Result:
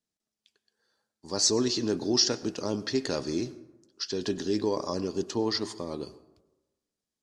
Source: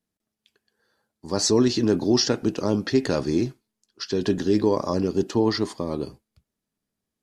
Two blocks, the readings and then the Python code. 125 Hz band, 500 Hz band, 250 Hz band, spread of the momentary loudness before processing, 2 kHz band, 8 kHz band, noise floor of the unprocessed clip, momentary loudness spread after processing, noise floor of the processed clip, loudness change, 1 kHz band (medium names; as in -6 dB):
-10.0 dB, -7.0 dB, -8.0 dB, 10 LU, -6.0 dB, 0.0 dB, -85 dBFS, 13 LU, under -85 dBFS, -5.5 dB, -6.5 dB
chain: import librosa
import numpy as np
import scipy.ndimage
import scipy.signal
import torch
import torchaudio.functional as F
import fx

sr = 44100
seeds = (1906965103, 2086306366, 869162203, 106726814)

y = scipy.signal.sosfilt(scipy.signal.butter(2, 6500.0, 'lowpass', fs=sr, output='sos'), x)
y = fx.bass_treble(y, sr, bass_db=-4, treble_db=11)
y = fx.rev_plate(y, sr, seeds[0], rt60_s=1.1, hf_ratio=0.4, predelay_ms=85, drr_db=17.5)
y = y * librosa.db_to_amplitude(-6.5)